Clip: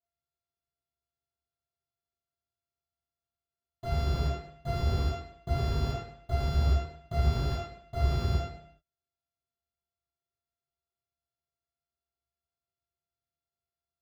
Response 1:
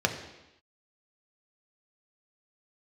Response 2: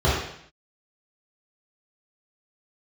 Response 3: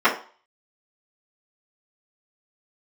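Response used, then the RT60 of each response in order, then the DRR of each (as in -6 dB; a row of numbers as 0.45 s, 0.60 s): 2; no single decay rate, 0.65 s, 0.40 s; 3.0 dB, -9.5 dB, -13.5 dB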